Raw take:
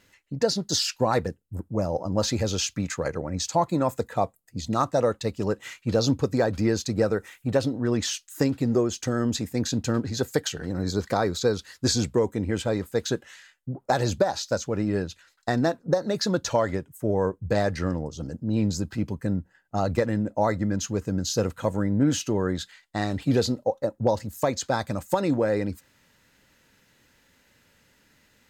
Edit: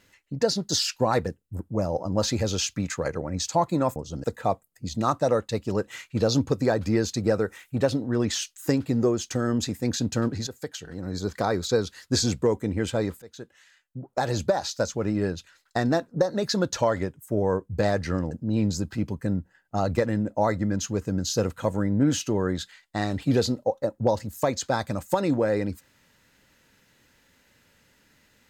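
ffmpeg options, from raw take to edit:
-filter_complex "[0:a]asplit=6[a][b][c][d][e][f];[a]atrim=end=3.962[g];[b]atrim=start=18.028:end=18.312[h];[c]atrim=start=3.958:end=10.19,asetpts=PTS-STARTPTS,afade=t=out:st=6.228:d=0.004:c=hsin:silence=0.211349[i];[d]atrim=start=10.19:end=12.94,asetpts=PTS-STARTPTS,afade=t=in:d=1.19:silence=0.211349,afade=t=out:st=2.746:d=0.004:c=hsin:silence=0.0749894[j];[e]atrim=start=12.94:end=18.032,asetpts=PTS-STARTPTS,afade=t=in:d=1.4:silence=0.0749894[k];[f]atrim=start=18.308[l];[g][h]acrossfade=d=0.004:c1=hsin:c2=hsin[m];[i][j][k]concat=n=3:v=0:a=1[n];[m][n]acrossfade=d=0.004:c1=hsin:c2=hsin[o];[o][l]acrossfade=d=0.004:c1=hsin:c2=hsin"

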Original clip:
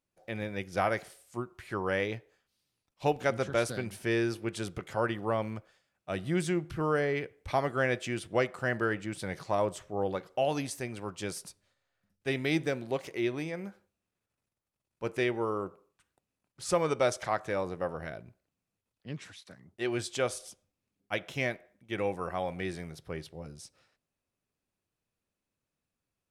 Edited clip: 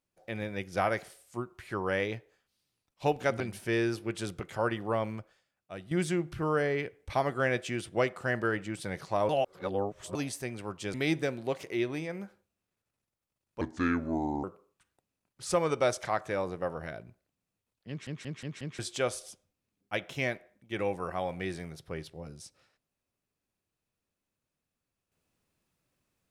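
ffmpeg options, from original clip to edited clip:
-filter_complex "[0:a]asplit=13[a][b][c][d][e][f][g][h][i][j][k][l][m];[a]atrim=end=3.402[n];[b]atrim=start=3.778:end=6.29,asetpts=PTS-STARTPTS,afade=t=out:st=1.662:d=0.85:silence=0.266073[o];[c]atrim=start=6.29:end=9.672,asetpts=PTS-STARTPTS,afade=t=in:d=0.004:c=hsin:silence=0.266073[p];[d]atrim=start=9.668:end=10.532,asetpts=PTS-STARTPTS,areverse[q];[e]atrim=start=10.528:end=11.322[r];[f]atrim=start=12.378:end=15.054[s];[g]atrim=start=15.05:end=15.63,asetpts=PTS-STARTPTS,asetrate=30870,aresample=44100[t];[h]atrim=start=15.626:end=19.262[u];[i]atrim=start=19.078:end=19.262[v];[j]atrim=start=19.078:end=19.262[w];[k]atrim=start=19.078:end=19.262[x];[l]atrim=start=19.078:end=19.262[y];[m]atrim=start=19.978[z];[o][p]concat=n=2:v=0:a=1[aa];[n][aa]acrossfade=d=0.004:c1=hsin:c2=hsin[ab];[ab][q]acrossfade=d=0.004:c1=hsin:c2=hsin[ac];[ac][r]acrossfade=d=0.004:c1=hsin:c2=hsin[ad];[ad][s]acrossfade=d=0.004:c1=hsin:c2=hsin[ae];[ae][t]acrossfade=d=0.004:c1=hsin:c2=hsin[af];[af][u]acrossfade=d=0.004:c1=hsin:c2=hsin[ag];[ag][v]acrossfade=d=0.004:c1=hsin:c2=hsin[ah];[ah][w]acrossfade=d=0.004:c1=hsin:c2=hsin[ai];[ai][x]acrossfade=d=0.004:c1=hsin:c2=hsin[aj];[aj][y]acrossfade=d=0.004:c1=hsin:c2=hsin[ak];[ak][z]acrossfade=d=0.004:c1=hsin:c2=hsin"

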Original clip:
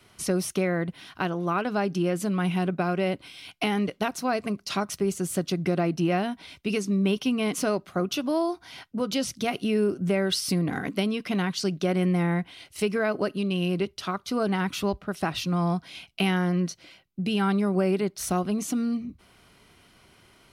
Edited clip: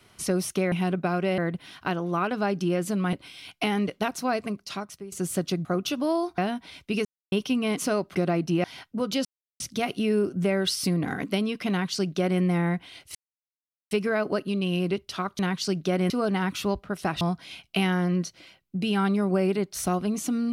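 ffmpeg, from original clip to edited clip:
-filter_complex "[0:a]asplit=16[a][b][c][d][e][f][g][h][i][j][k][l][m][n][o][p];[a]atrim=end=0.722[q];[b]atrim=start=2.468:end=3.132[r];[c]atrim=start=0.718:end=2.472[s];[d]atrim=start=3.128:end=5.12,asetpts=PTS-STARTPTS,afade=t=out:st=1.202:d=0.79:silence=0.112202[t];[e]atrim=start=5.12:end=5.652,asetpts=PTS-STARTPTS,afade=t=in:d=0.004:c=hsin:silence=0.112202[u];[f]atrim=start=7.908:end=8.642[v];[g]atrim=start=6.138:end=6.81,asetpts=PTS-STARTPTS,afade=t=out:st=0.668:d=0.004:c=hsin[w];[h]atrim=start=6.81:end=7.08,asetpts=PTS-STARTPTS,volume=0[x];[i]atrim=start=7.08:end=7.912,asetpts=PTS-STARTPTS,afade=t=in:d=0.004:c=hsin[y];[j]atrim=start=5.648:end=6.142[z];[k]atrim=start=8.638:end=9.25,asetpts=PTS-STARTPTS,afade=t=out:st=0.608:d=0.004:c=hsin,apad=pad_dur=0.35[aa];[l]atrim=start=9.25:end=12.8,asetpts=PTS-STARTPTS,afade=t=in:d=0.004:c=hsin,afade=t=out:st=3.546:d=0.004:c=hsin,apad=pad_dur=0.76[ab];[m]atrim=start=12.8:end=14.282,asetpts=PTS-STARTPTS,afade=t=in:d=0.004:c=hsin[ac];[n]atrim=start=11.348:end=12.062[ad];[o]atrim=start=14.278:end=15.392[ae];[p]atrim=start=15.648[af];[q][r]acrossfade=d=0.004:c1=hsin:c2=hsin[ag];[ag][s]acrossfade=d=0.004:c1=hsin:c2=hsin[ah];[t][u]concat=n=2:v=0:a=1[ai];[ah][ai]acrossfade=d=0.004:c1=hsin:c2=hsin[aj];[aj][v]acrossfade=d=0.004:c1=hsin:c2=hsin[ak];[w][x][y]concat=n=3:v=0:a=1[al];[ak][al]acrossfade=d=0.004:c1=hsin:c2=hsin[am];[am][z]acrossfade=d=0.004:c1=hsin:c2=hsin[an];[aa][ab][ac]concat=n=3:v=0:a=1[ao];[an][ao]acrossfade=d=0.004:c1=hsin:c2=hsin[ap];[ap][ad]acrossfade=d=0.004:c1=hsin:c2=hsin[aq];[aq][ae]acrossfade=d=0.004:c1=hsin:c2=hsin[ar];[ar][af]acrossfade=d=0.004:c1=hsin:c2=hsin"

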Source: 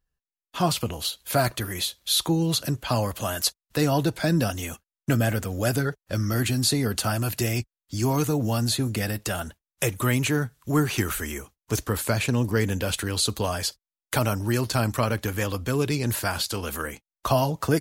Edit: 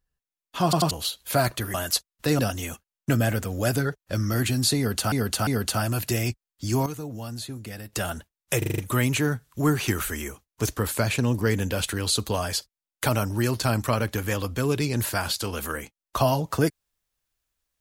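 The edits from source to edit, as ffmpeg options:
-filter_complex "[0:a]asplit=15[a][b][c][d][e][f][g][h][i][j][k][l][m][n][o];[a]atrim=end=0.732[p];[b]atrim=start=0.638:end=0.732[q];[c]atrim=start=0.638:end=0.732[r];[d]atrim=start=0.908:end=1.742[s];[e]atrim=start=3.248:end=3.902[t];[f]atrim=start=4.388:end=7.122[u];[g]atrim=start=6.768:end=7.122[v];[h]atrim=start=6.768:end=8.162[w];[i]atrim=start=8.158:end=9.232,asetpts=PTS-STARTPTS,volume=-10.5dB[x];[j]atrim=start=9.228:end=9.922[y];[k]atrim=start=9.878:end=9.922[z];[l]atrim=start=9.878:end=9.922[aa];[m]atrim=start=9.878:end=9.922[ab];[n]atrim=start=9.878:end=9.922[ac];[o]atrim=start=9.878[ad];[p][q]acrossfade=d=0.004:c1=hsin:c2=hsin[ae];[ae][r]acrossfade=d=0.004:c1=hsin:c2=hsin[af];[af][s]acrossfade=d=0.004:c1=hsin:c2=hsin[ag];[ag][t]acrossfade=d=0.004:c1=hsin:c2=hsin[ah];[ah][u]acrossfade=d=0.004:c1=hsin:c2=hsin[ai];[ai][v]acrossfade=d=0.004:c1=hsin:c2=hsin[aj];[aj][w]acrossfade=d=0.004:c1=hsin:c2=hsin[ak];[ak][x]acrossfade=d=0.004:c1=hsin:c2=hsin[al];[al][y]acrossfade=d=0.004:c1=hsin:c2=hsin[am];[am][z]acrossfade=d=0.004:c1=hsin:c2=hsin[an];[an][aa]acrossfade=d=0.004:c1=hsin:c2=hsin[ao];[ao][ab]acrossfade=d=0.004:c1=hsin:c2=hsin[ap];[ap][ac]acrossfade=d=0.004:c1=hsin:c2=hsin[aq];[aq][ad]acrossfade=d=0.004:c1=hsin:c2=hsin"

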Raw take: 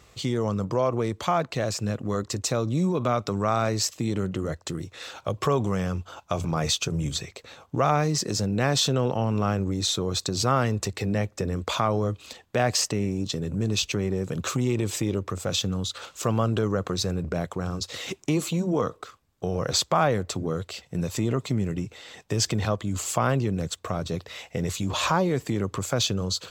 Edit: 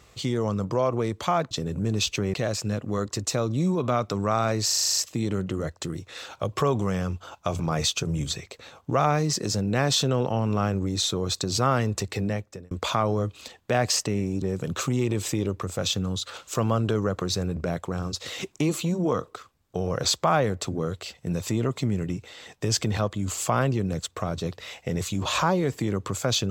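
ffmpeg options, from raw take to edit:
-filter_complex "[0:a]asplit=13[a][b][c][d][e][f][g][h][i][j][k][l][m];[a]atrim=end=1.512[n];[b]atrim=start=13.268:end=14.102[o];[c]atrim=start=1.508:end=3.862[p];[d]atrim=start=3.818:end=3.862[q];[e]atrim=start=3.818:end=3.862[r];[f]atrim=start=3.818:end=3.862[s];[g]atrim=start=3.818:end=3.862[t];[h]atrim=start=3.818:end=3.862[u];[i]atrim=start=3.818:end=3.862[v];[j]atrim=start=3.818:end=3.862[w];[k]atrim=start=3.818:end=11.56,asetpts=PTS-STARTPTS,afade=t=out:st=7.232:d=0.51[x];[l]atrim=start=11.56:end=13.272,asetpts=PTS-STARTPTS,afade=t=in:d=0.004:c=hsin[y];[m]atrim=start=14.098[z];[n][o]acrossfade=d=0.004:c1=hsin:c2=hsin[aa];[aa][p]acrossfade=d=0.004:c1=hsin:c2=hsin[ab];[ab][q]acrossfade=d=0.004:c1=hsin:c2=hsin[ac];[ac][r]acrossfade=d=0.004:c1=hsin:c2=hsin[ad];[ad][s]acrossfade=d=0.004:c1=hsin:c2=hsin[ae];[ae][t]acrossfade=d=0.004:c1=hsin:c2=hsin[af];[af][u]acrossfade=d=0.004:c1=hsin:c2=hsin[ag];[ag][v]acrossfade=d=0.004:c1=hsin:c2=hsin[ah];[ah][w]acrossfade=d=0.004:c1=hsin:c2=hsin[ai];[x][y]concat=n=2:v=0:a=1[aj];[ai][aj]acrossfade=d=0.004:c1=hsin:c2=hsin[ak];[ak][z]acrossfade=d=0.004:c1=hsin:c2=hsin"

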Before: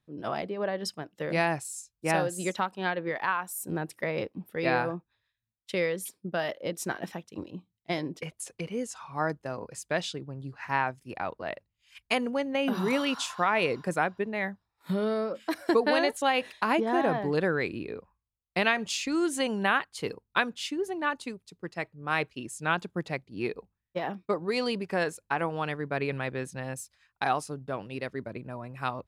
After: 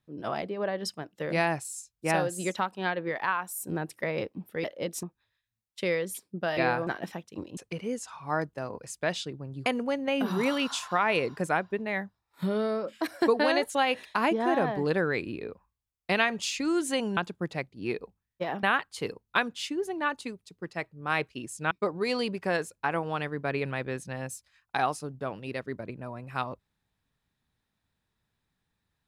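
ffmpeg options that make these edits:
-filter_complex "[0:a]asplit=10[a][b][c][d][e][f][g][h][i][j];[a]atrim=end=4.642[k];[b]atrim=start=6.478:end=6.872[l];[c]atrim=start=4.938:end=6.482[m];[d]atrim=start=4.638:end=4.942[n];[e]atrim=start=6.868:end=7.572[o];[f]atrim=start=8.448:end=10.542[p];[g]atrim=start=12.128:end=19.642[q];[h]atrim=start=22.718:end=24.182[r];[i]atrim=start=19.638:end=22.722[s];[j]atrim=start=24.178[t];[k][l]acrossfade=d=0.004:c1=hsin:c2=hsin[u];[u][m]acrossfade=d=0.004:c1=hsin:c2=hsin[v];[v][n]acrossfade=d=0.004:c1=hsin:c2=hsin[w];[w][o]acrossfade=d=0.004:c1=hsin:c2=hsin[x];[x][p]acrossfade=d=0.004:c1=hsin:c2=hsin[y];[y][q]acrossfade=d=0.004:c1=hsin:c2=hsin[z];[z][r]acrossfade=d=0.004:c1=hsin:c2=hsin[aa];[aa][s]acrossfade=d=0.004:c1=hsin:c2=hsin[ab];[ab][t]acrossfade=d=0.004:c1=hsin:c2=hsin"

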